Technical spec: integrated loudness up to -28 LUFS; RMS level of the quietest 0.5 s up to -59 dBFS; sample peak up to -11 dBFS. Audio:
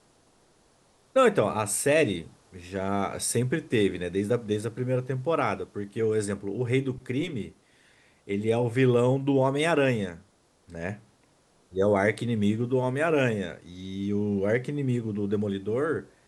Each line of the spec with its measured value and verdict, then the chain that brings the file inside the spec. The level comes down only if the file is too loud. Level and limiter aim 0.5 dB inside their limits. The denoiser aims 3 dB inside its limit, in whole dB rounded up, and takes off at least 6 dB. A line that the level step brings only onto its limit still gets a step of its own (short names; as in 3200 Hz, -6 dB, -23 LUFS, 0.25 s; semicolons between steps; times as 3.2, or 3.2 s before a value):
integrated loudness -27.0 LUFS: fail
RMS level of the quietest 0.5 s -63 dBFS: OK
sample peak -9.5 dBFS: fail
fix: gain -1.5 dB; limiter -11.5 dBFS